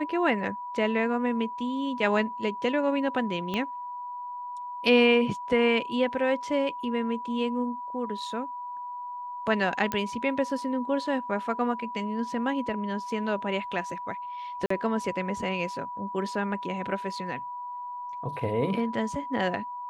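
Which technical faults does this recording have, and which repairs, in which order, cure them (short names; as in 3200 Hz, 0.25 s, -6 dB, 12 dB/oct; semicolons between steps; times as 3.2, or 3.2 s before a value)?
tone 980 Hz -34 dBFS
3.54 pop -17 dBFS
9.92 pop -14 dBFS
14.66–14.7 gap 44 ms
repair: de-click; notch 980 Hz, Q 30; interpolate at 14.66, 44 ms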